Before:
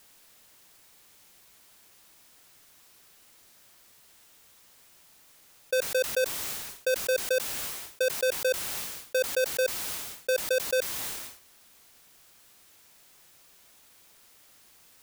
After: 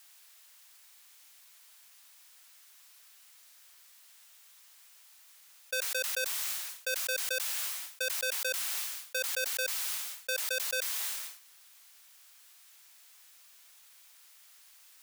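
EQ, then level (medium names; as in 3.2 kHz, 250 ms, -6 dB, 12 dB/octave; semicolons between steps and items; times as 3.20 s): Bessel high-pass 1.3 kHz, order 2; 0.0 dB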